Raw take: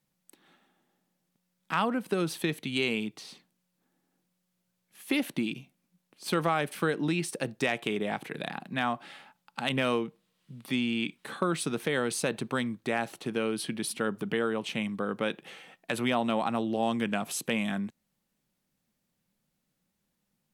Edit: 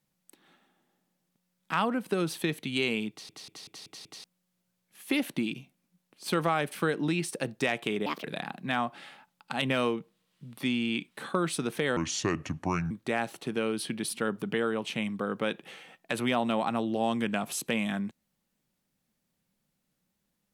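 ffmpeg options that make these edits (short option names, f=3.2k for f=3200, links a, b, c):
-filter_complex "[0:a]asplit=11[a][b][c][d][e][f][g][h][i][j][k];[a]atrim=end=3.292[l];[b]atrim=start=3.098:end=3.292[m];[c]atrim=start=3.098:end=3.292[n];[d]atrim=start=3.098:end=3.292[o];[e]atrim=start=3.098:end=3.292[p];[f]atrim=start=3.098:end=3.292[q];[g]atrim=start=4.238:end=8.064[r];[h]atrim=start=8.06:end=8.32,asetpts=PTS-STARTPTS,asetrate=62181,aresample=44100[s];[i]atrim=start=8.316:end=12.044[t];[j]atrim=start=12.04:end=12.7,asetpts=PTS-STARTPTS,asetrate=30870,aresample=44100[u];[k]atrim=start=12.696[v];[l][m]acrossfade=d=0.004:c1=hsin:c2=hsin[w];[w][n]acrossfade=d=0.004:c1=hsin:c2=hsin[x];[x][o]acrossfade=d=0.004:c1=hsin:c2=hsin[y];[y][p]acrossfade=d=0.004:c1=hsin:c2=hsin[z];[z][q]acrossfade=d=0.004:c1=hsin:c2=hsin[aa];[aa][r]acrossfade=d=0.004:c1=hsin:c2=hsin[ab];[ab][s]acrossfade=d=0.004:c1=hsin:c2=hsin[ac];[ac][t]acrossfade=d=0.004:c1=hsin:c2=hsin[ad];[ad][u]acrossfade=d=0.004:c1=hsin:c2=hsin[ae];[ae][v]acrossfade=d=0.004:c1=hsin:c2=hsin"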